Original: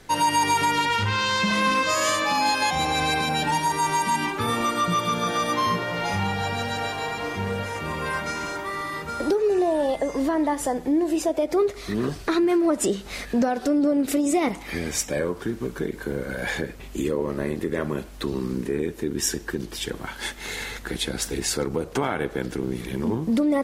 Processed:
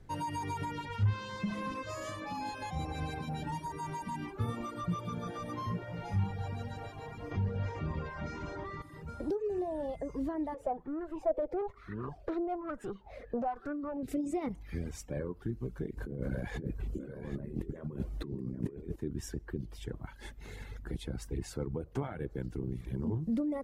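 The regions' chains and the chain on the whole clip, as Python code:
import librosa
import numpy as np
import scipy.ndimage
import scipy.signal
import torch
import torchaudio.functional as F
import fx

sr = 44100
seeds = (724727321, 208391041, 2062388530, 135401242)

y = fx.chain(x, sr, fx.lowpass(hz=6200.0, slope=24),
    fx.env_flatten(amount_pct=100), at=(7.31, 8.82))
y = fx.chain(y, sr, fx.bass_treble(bass_db=-8, treble_db=-12),
    fx.tube_stage(drive_db=22.0, bias=0.45),
    fx.bell_lfo(hz=1.1, low_hz=500.0, high_hz=1500.0, db=15), at=(10.54, 14.03))
y = fx.chain(y, sr, fx.peak_eq(hz=250.0, db=5.5, octaves=2.3),
    fx.over_compress(threshold_db=-29.0, ratio=-1.0),
    fx.echo_single(ms=777, db=-10.5), at=(15.97, 18.96))
y = fx.dereverb_blind(y, sr, rt60_s=0.84)
y = fx.curve_eq(y, sr, hz=(120.0, 200.0, 3800.0), db=(0, -8, -22))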